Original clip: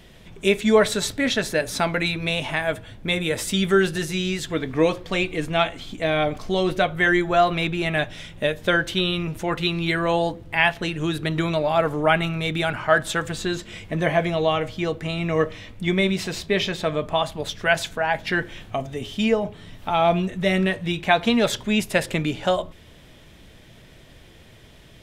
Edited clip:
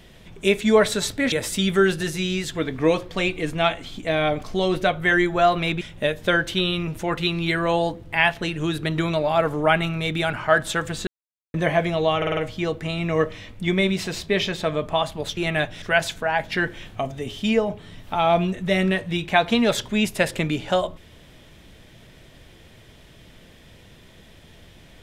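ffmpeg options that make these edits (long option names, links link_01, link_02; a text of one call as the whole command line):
ffmpeg -i in.wav -filter_complex "[0:a]asplit=11[link_01][link_02][link_03][link_04][link_05][link_06][link_07][link_08][link_09][link_10][link_11];[link_01]atrim=end=1.322[link_12];[link_02]atrim=start=3.268:end=7.762[link_13];[link_03]atrim=start=8.208:end=13.47,asetpts=PTS-STARTPTS,afade=type=out:start_time=5.258:duration=0.004:curve=hsin[link_14];[link_04]atrim=start=13.47:end=13.94,asetpts=PTS-STARTPTS,volume=0[link_15];[link_05]atrim=start=13.94:end=14.622,asetpts=PTS-STARTPTS,afade=type=in:duration=0.004:curve=hsin[link_16];[link_06]atrim=start=14.568:end=14.622[link_17];[link_07]atrim=start=14.568:end=14.622[link_18];[link_08]atrim=start=14.568:end=14.622[link_19];[link_09]atrim=start=14.568:end=17.572[link_20];[link_10]atrim=start=7.758:end=8.212[link_21];[link_11]atrim=start=17.568[link_22];[link_12][link_13]acrossfade=duration=0.004:curve1=hsin:curve2=hsin[link_23];[link_14][link_15][link_16]concat=n=3:v=0:a=1[link_24];[link_23][link_24]acrossfade=duration=0.004:curve1=hsin:curve2=hsin[link_25];[link_25][link_17]acrossfade=duration=0.004:curve1=hsin:curve2=hsin[link_26];[link_26][link_18]acrossfade=duration=0.004:curve1=hsin:curve2=hsin[link_27];[link_27][link_19]acrossfade=duration=0.004:curve1=hsin:curve2=hsin[link_28];[link_28][link_20]acrossfade=duration=0.004:curve1=hsin:curve2=hsin[link_29];[link_29][link_21]acrossfade=duration=0.004:curve1=hsin:curve2=hsin[link_30];[link_30][link_22]acrossfade=duration=0.004:curve1=hsin:curve2=hsin" out.wav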